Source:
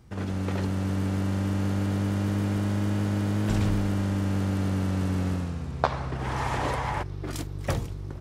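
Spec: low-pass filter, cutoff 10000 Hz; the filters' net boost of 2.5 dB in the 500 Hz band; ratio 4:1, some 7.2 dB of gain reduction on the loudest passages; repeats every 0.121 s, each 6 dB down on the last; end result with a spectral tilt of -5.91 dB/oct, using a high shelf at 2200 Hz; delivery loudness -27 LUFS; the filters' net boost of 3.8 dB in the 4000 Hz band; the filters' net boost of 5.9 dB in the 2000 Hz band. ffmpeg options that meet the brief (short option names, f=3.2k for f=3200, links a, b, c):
-af "lowpass=10k,equalizer=f=500:t=o:g=3,equalizer=f=2k:t=o:g=8.5,highshelf=f=2.2k:g=-5.5,equalizer=f=4k:t=o:g=7,acompressor=threshold=-27dB:ratio=4,aecho=1:1:121|242|363|484|605|726:0.501|0.251|0.125|0.0626|0.0313|0.0157,volume=3.5dB"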